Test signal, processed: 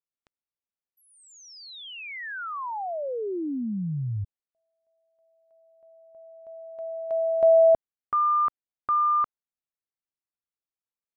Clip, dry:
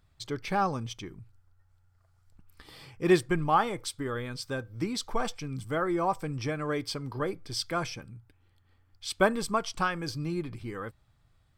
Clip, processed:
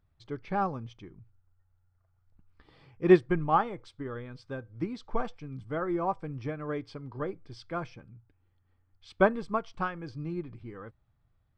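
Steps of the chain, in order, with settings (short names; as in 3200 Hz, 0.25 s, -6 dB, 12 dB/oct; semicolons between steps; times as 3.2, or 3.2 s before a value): tape spacing loss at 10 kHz 28 dB; upward expander 1.5:1, over -37 dBFS; gain +5 dB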